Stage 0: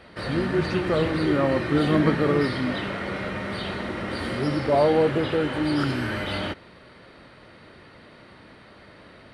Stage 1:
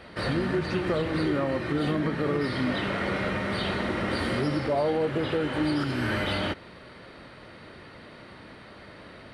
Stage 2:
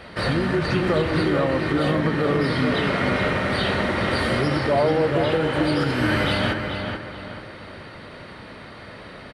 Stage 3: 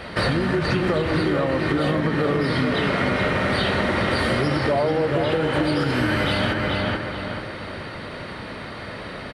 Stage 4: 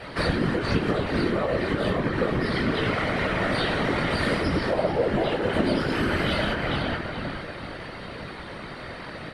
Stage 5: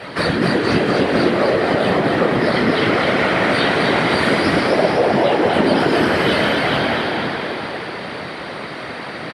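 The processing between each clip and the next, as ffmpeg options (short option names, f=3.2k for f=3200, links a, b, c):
-af "alimiter=limit=-19.5dB:level=0:latency=1:release=333,volume=2dB"
-filter_complex "[0:a]equalizer=f=310:t=o:w=0.77:g=-3,asplit=2[a][b];[b]adelay=432,lowpass=f=3.4k:p=1,volume=-5.5dB,asplit=2[c][d];[d]adelay=432,lowpass=f=3.4k:p=1,volume=0.39,asplit=2[e][f];[f]adelay=432,lowpass=f=3.4k:p=1,volume=0.39,asplit=2[g][h];[h]adelay=432,lowpass=f=3.4k:p=1,volume=0.39,asplit=2[i][j];[j]adelay=432,lowpass=f=3.4k:p=1,volume=0.39[k];[a][c][e][g][i][k]amix=inputs=6:normalize=0,volume=6dB"
-af "acompressor=threshold=-24dB:ratio=6,volume=6dB"
-af "flanger=delay=19.5:depth=2.1:speed=0.85,afftfilt=real='hypot(re,im)*cos(2*PI*random(0))':imag='hypot(re,im)*sin(2*PI*random(1))':win_size=512:overlap=0.75,volume=5.5dB"
-filter_complex "[0:a]highpass=130,asplit=2[a][b];[b]asplit=8[c][d][e][f][g][h][i][j];[c]adelay=255,afreqshift=95,volume=-3.5dB[k];[d]adelay=510,afreqshift=190,volume=-8.7dB[l];[e]adelay=765,afreqshift=285,volume=-13.9dB[m];[f]adelay=1020,afreqshift=380,volume=-19.1dB[n];[g]adelay=1275,afreqshift=475,volume=-24.3dB[o];[h]adelay=1530,afreqshift=570,volume=-29.5dB[p];[i]adelay=1785,afreqshift=665,volume=-34.7dB[q];[j]adelay=2040,afreqshift=760,volume=-39.8dB[r];[k][l][m][n][o][p][q][r]amix=inputs=8:normalize=0[s];[a][s]amix=inputs=2:normalize=0,volume=7dB"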